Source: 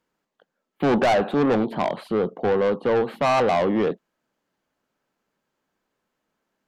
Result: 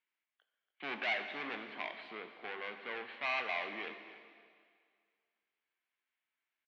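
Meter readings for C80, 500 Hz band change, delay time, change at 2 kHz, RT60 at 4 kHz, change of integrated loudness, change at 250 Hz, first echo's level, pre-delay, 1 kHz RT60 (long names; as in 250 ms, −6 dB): 8.5 dB, −25.0 dB, 285 ms, −6.0 dB, 2.0 s, −17.0 dB, −27.5 dB, −15.5 dB, 4 ms, 2.0 s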